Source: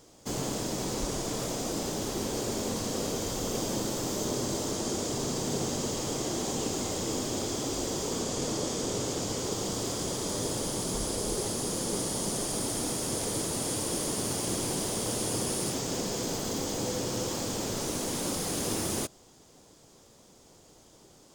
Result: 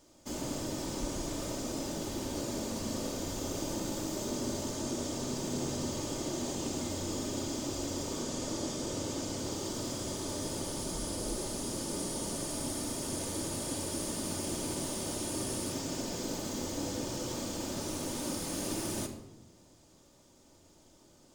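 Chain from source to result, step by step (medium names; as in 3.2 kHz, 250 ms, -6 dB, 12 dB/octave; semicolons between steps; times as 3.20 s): simulated room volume 3900 m³, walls furnished, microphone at 2.6 m; trim -7 dB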